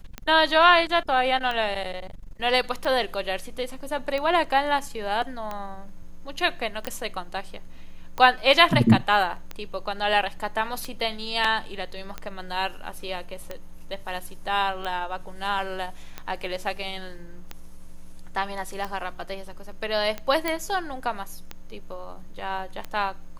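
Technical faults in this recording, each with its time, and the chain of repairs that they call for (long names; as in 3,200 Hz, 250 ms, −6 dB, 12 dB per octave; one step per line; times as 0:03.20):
scratch tick 45 rpm −17 dBFS
0:06.87: click −14 dBFS
0:20.48: click −11 dBFS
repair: click removal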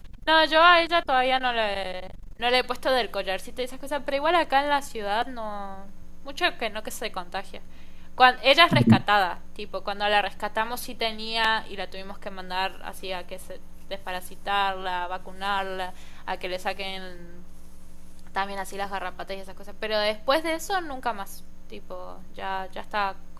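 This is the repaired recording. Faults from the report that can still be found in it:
none of them is left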